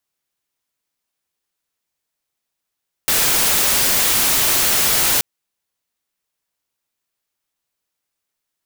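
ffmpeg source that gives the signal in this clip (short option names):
-f lavfi -i "anoisesrc=c=white:a=0.274:d=2.13:r=44100:seed=1"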